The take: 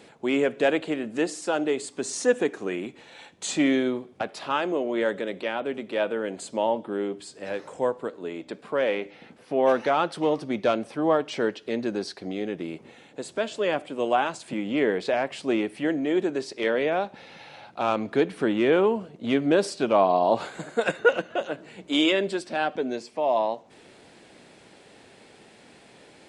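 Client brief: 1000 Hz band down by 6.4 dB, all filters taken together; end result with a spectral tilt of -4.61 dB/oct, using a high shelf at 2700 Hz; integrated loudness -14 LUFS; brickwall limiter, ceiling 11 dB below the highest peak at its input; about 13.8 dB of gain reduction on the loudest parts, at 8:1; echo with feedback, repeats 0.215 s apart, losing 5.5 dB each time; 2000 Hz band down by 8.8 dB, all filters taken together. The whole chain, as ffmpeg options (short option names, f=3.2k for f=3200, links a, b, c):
-af "equalizer=f=1k:t=o:g=-7.5,equalizer=f=2k:t=o:g=-7,highshelf=f=2.7k:g=-5,acompressor=threshold=-32dB:ratio=8,alimiter=level_in=7.5dB:limit=-24dB:level=0:latency=1,volume=-7.5dB,aecho=1:1:215|430|645|860|1075|1290|1505:0.531|0.281|0.149|0.079|0.0419|0.0222|0.0118,volume=26dB"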